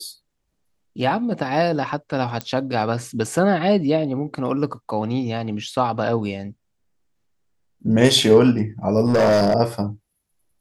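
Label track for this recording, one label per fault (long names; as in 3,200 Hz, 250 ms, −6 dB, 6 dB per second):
2.410000	2.410000	click −11 dBFS
9.050000	9.540000	clipping −12.5 dBFS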